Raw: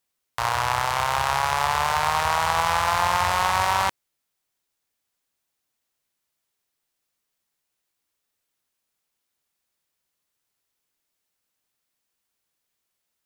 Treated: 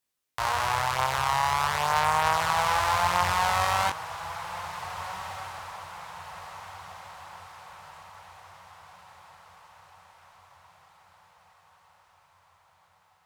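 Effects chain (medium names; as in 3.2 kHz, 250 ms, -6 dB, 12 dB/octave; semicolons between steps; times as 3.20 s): chorus 0.43 Hz, delay 19 ms, depth 4.1 ms; echo that smears into a reverb 1612 ms, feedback 51%, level -12.5 dB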